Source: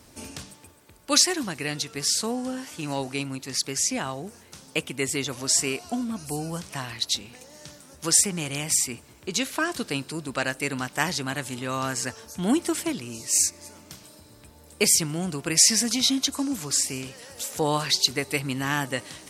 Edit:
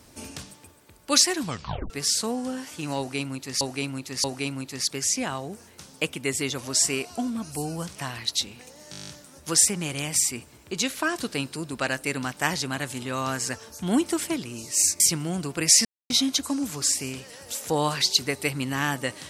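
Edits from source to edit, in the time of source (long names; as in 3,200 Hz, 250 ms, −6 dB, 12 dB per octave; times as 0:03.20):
0:01.40: tape stop 0.50 s
0:02.98–0:03.61: repeat, 3 plays
0:07.65: stutter 0.02 s, 10 plays
0:13.56–0:14.89: remove
0:15.74–0:15.99: silence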